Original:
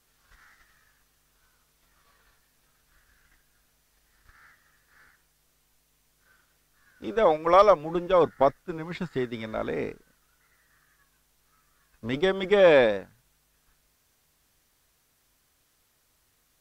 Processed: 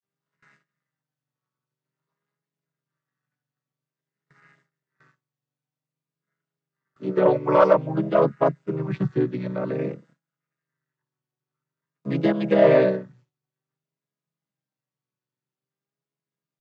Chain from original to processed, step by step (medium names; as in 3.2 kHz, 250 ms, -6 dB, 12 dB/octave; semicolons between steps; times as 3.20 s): vocoder on a held chord minor triad, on C3; vibrato 0.51 Hz 90 cents; in parallel at -4.5 dB: saturation -16 dBFS, distortion -12 dB; on the sum: gate with hold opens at -48 dBFS